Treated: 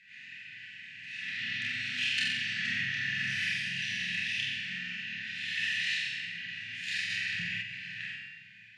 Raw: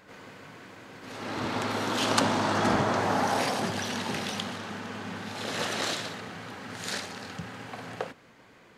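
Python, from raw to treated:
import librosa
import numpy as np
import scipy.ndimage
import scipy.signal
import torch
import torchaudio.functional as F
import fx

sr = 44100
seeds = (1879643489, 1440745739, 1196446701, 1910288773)

p1 = scipy.signal.sosfilt(scipy.signal.ellip(3, 1.0, 70, [150.0, 2100.0], 'bandstop', fs=sr, output='sos'), x)
p2 = fx.spec_gate(p1, sr, threshold_db=-30, keep='strong')
p3 = fx.rider(p2, sr, range_db=4, speed_s=0.5)
p4 = p2 + F.gain(torch.from_numpy(p3), -0.5).numpy()
p5 = fx.vowel_filter(p4, sr, vowel='e')
p6 = 10.0 ** (-21.5 / 20.0) * np.tanh(p5 / 10.0 ** (-21.5 / 20.0))
p7 = fx.doubler(p6, sr, ms=29.0, db=-2.5)
p8 = fx.room_flutter(p7, sr, wall_m=7.7, rt60_s=0.76)
p9 = fx.room_shoebox(p8, sr, seeds[0], volume_m3=1300.0, walls='mixed', distance_m=1.5)
p10 = fx.env_flatten(p9, sr, amount_pct=50, at=(7.09, 7.61), fade=0.02)
y = F.gain(torch.from_numpy(p10), 6.5).numpy()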